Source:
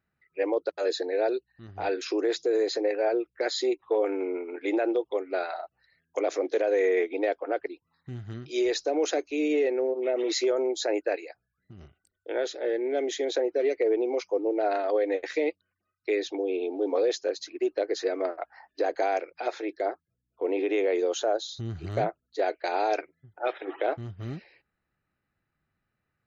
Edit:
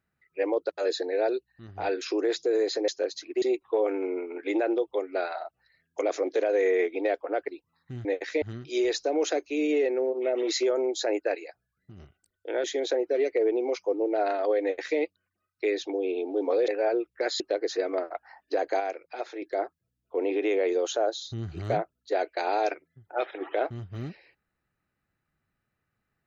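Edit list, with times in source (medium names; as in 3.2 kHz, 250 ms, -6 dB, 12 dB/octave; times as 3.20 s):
2.88–3.60 s: swap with 17.13–17.67 s
12.45–13.09 s: delete
15.07–15.44 s: copy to 8.23 s
19.07–19.69 s: gain -4.5 dB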